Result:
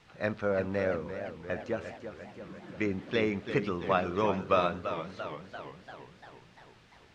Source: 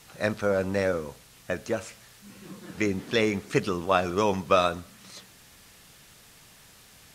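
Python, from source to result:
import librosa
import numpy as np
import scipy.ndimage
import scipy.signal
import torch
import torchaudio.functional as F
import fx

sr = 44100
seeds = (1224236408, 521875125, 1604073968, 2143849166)

y = scipy.signal.sosfilt(scipy.signal.butter(2, 3200.0, 'lowpass', fs=sr, output='sos'), x)
y = fx.echo_warbled(y, sr, ms=343, feedback_pct=61, rate_hz=2.8, cents=145, wet_db=-9.5)
y = y * librosa.db_to_amplitude(-4.5)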